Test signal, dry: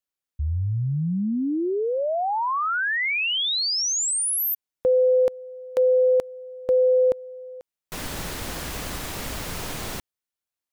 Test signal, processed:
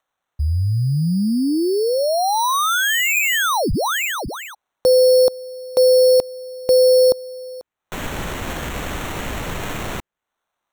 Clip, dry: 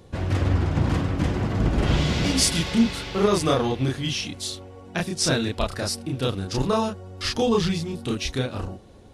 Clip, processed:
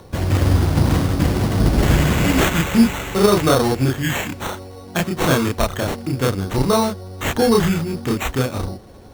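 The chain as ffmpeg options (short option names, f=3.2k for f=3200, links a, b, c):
-filter_complex "[0:a]lowpass=6.7k,acrossover=split=630|1500[a][b][c];[b]acompressor=mode=upward:threshold=-52dB:ratio=1.5:attack=85:release=155:knee=2.83:detection=peak[d];[a][d][c]amix=inputs=3:normalize=0,acrusher=samples=9:mix=1:aa=0.000001,volume=6dB"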